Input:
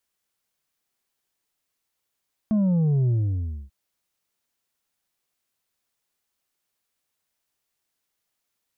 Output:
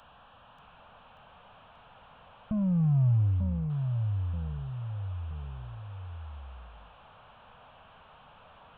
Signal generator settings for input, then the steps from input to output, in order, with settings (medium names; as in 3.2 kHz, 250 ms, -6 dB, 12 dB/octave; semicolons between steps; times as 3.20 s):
sub drop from 220 Hz, over 1.19 s, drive 4.5 dB, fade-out 0.62 s, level -18.5 dB
one-bit delta coder 16 kbps, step -44 dBFS; static phaser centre 870 Hz, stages 4; ever faster or slower copies 585 ms, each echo -2 st, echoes 3, each echo -6 dB